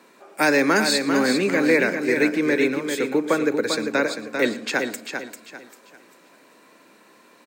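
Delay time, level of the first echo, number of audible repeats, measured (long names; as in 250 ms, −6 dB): 114 ms, −19.0 dB, 5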